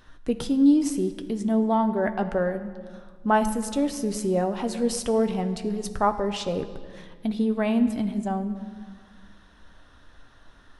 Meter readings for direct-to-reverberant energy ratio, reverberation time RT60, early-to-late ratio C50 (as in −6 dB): 7.5 dB, 1.7 s, 11.5 dB